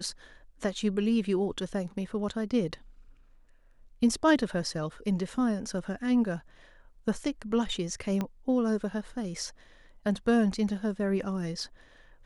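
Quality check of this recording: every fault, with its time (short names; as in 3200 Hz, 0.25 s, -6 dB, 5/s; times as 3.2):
8.21 pop -18 dBFS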